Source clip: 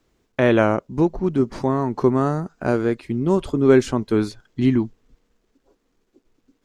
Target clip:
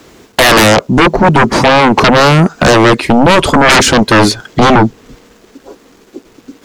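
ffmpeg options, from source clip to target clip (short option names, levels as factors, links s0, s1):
-filter_complex "[0:a]asplit=2[s0][s1];[s1]acompressor=threshold=0.0355:ratio=6,volume=1[s2];[s0][s2]amix=inputs=2:normalize=0,highpass=f=170:p=1,aeval=exprs='0.75*sin(PI/2*8.91*val(0)/0.75)':c=same"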